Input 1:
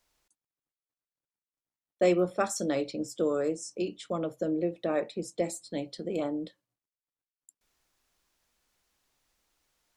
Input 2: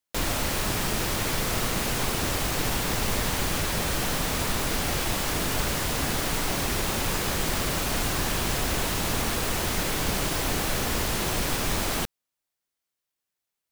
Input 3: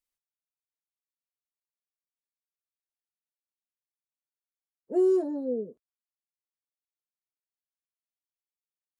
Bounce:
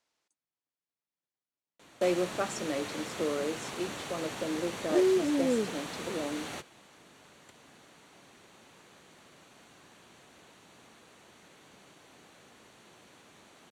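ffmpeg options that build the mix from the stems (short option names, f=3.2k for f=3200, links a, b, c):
-filter_complex "[0:a]volume=-4dB,asplit=2[a][b];[1:a]bandreject=f=5.1k:w=5.4,adelay=1650,volume=-10.5dB[c];[2:a]aemphasis=mode=reproduction:type=riaa,acompressor=threshold=-22dB:ratio=6,volume=-0.5dB[d];[b]apad=whole_len=677477[e];[c][e]sidechaingate=range=-17dB:threshold=-59dB:ratio=16:detection=peak[f];[a][f][d]amix=inputs=3:normalize=0,acrusher=bits=4:mode=log:mix=0:aa=0.000001,highpass=170,lowpass=7.5k"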